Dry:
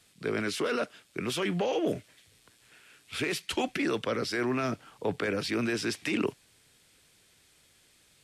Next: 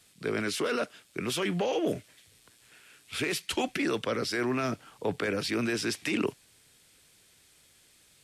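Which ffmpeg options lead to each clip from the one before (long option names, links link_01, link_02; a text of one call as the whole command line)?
ffmpeg -i in.wav -af "highshelf=frequency=6300:gain=4.5" out.wav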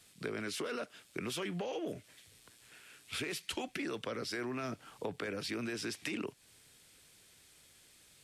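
ffmpeg -i in.wav -af "acompressor=threshold=-35dB:ratio=6,volume=-1dB" out.wav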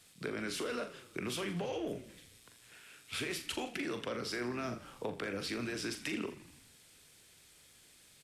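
ffmpeg -i in.wav -filter_complex "[0:a]asplit=2[link_01][link_02];[link_02]adelay=41,volume=-8.5dB[link_03];[link_01][link_03]amix=inputs=2:normalize=0,asplit=7[link_04][link_05][link_06][link_07][link_08][link_09][link_10];[link_05]adelay=82,afreqshift=-36,volume=-15dB[link_11];[link_06]adelay=164,afreqshift=-72,volume=-19.4dB[link_12];[link_07]adelay=246,afreqshift=-108,volume=-23.9dB[link_13];[link_08]adelay=328,afreqshift=-144,volume=-28.3dB[link_14];[link_09]adelay=410,afreqshift=-180,volume=-32.7dB[link_15];[link_10]adelay=492,afreqshift=-216,volume=-37.2dB[link_16];[link_04][link_11][link_12][link_13][link_14][link_15][link_16]amix=inputs=7:normalize=0" out.wav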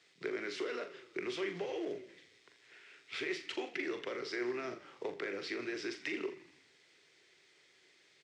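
ffmpeg -i in.wav -af "acrusher=bits=4:mode=log:mix=0:aa=0.000001,highpass=210,equalizer=frequency=220:width_type=q:width=4:gain=-9,equalizer=frequency=380:width_type=q:width=4:gain=10,equalizer=frequency=2000:width_type=q:width=4:gain=9,lowpass=frequency=6000:width=0.5412,lowpass=frequency=6000:width=1.3066,volume=-4dB" out.wav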